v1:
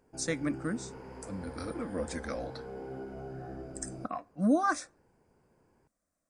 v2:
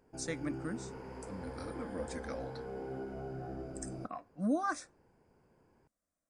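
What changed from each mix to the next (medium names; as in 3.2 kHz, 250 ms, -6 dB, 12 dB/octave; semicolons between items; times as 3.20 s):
speech -6.0 dB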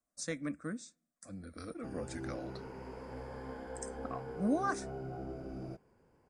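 background: entry +1.70 s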